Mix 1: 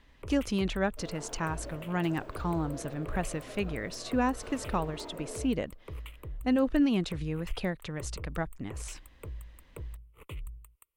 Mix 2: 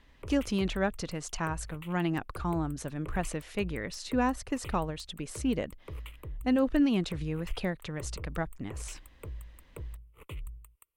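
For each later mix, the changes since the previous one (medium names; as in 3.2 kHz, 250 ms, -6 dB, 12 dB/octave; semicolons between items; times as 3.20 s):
second sound: muted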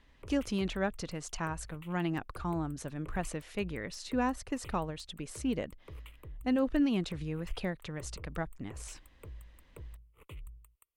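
speech -3.0 dB; background -6.0 dB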